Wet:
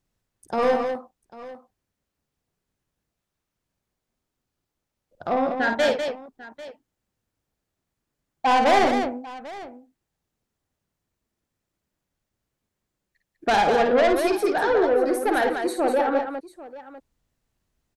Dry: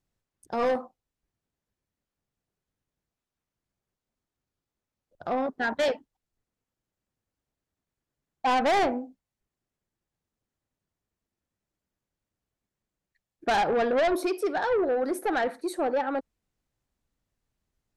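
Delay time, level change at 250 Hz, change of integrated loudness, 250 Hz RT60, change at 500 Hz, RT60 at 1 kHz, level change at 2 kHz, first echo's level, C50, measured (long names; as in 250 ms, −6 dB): 53 ms, +5.5 dB, +5.0 dB, no reverb audible, +5.5 dB, no reverb audible, +5.5 dB, −6.5 dB, no reverb audible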